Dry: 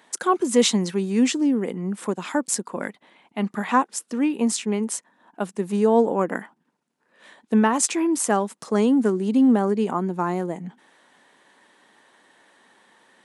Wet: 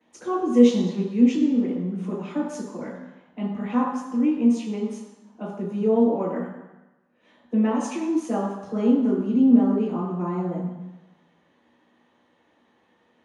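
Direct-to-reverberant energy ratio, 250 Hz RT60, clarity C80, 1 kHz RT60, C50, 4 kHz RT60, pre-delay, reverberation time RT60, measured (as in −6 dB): −13.5 dB, 1.0 s, 5.0 dB, 1.1 s, 2.0 dB, 1.1 s, 3 ms, 1.0 s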